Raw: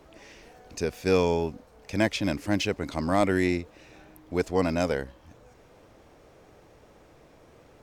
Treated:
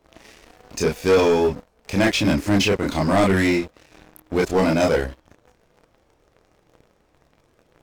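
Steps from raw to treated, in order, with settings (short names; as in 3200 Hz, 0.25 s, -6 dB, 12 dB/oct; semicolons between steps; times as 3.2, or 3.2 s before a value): chorus voices 4, 0.46 Hz, delay 29 ms, depth 3.2 ms; sample leveller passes 3; gain +1.5 dB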